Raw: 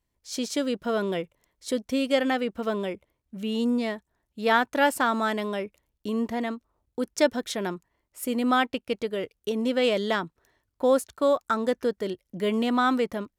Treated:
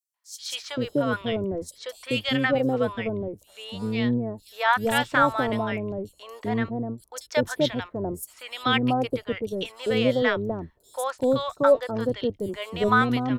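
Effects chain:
sub-octave generator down 1 octave, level −5 dB
three-band delay without the direct sound highs, mids, lows 140/390 ms, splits 760/5,500 Hz
auto-filter bell 1.1 Hz 440–3,800 Hz +9 dB

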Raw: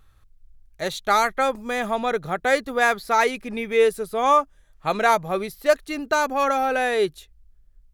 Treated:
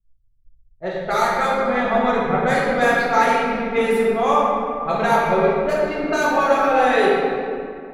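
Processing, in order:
noise gate −44 dBFS, range −10 dB
low-pass that shuts in the quiet parts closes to 300 Hz, open at −16.5 dBFS
0:05.17–0:05.60: comb filter 2.1 ms, depth 82%
downward compressor, threshold −20 dBFS, peak gain reduction 8 dB
rectangular room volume 190 cubic metres, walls hard, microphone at 1 metre
multiband upward and downward expander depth 40%

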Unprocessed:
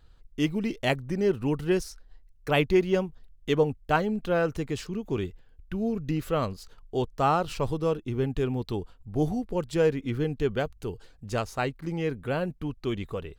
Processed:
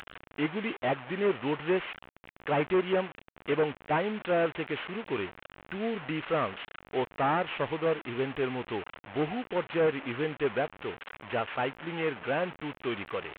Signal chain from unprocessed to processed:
linear delta modulator 16 kbit/s, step −35.5 dBFS
high-pass filter 930 Hz 6 dB per octave
level +6 dB

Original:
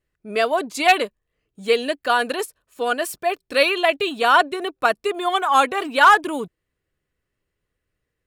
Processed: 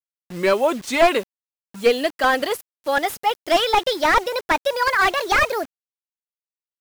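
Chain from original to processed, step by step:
gliding playback speed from 80% → 163%
bit reduction 7 bits
slew-rate limiting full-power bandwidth 240 Hz
level +2 dB

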